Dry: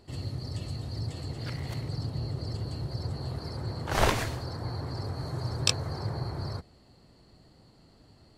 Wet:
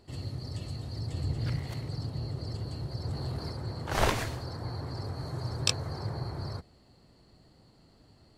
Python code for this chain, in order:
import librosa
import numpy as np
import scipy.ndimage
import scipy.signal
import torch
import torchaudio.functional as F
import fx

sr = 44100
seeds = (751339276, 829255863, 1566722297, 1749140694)

y = fx.low_shelf(x, sr, hz=190.0, db=10.0, at=(1.11, 1.59))
y = fx.leveller(y, sr, passes=1, at=(3.07, 3.52))
y = F.gain(torch.from_numpy(y), -2.0).numpy()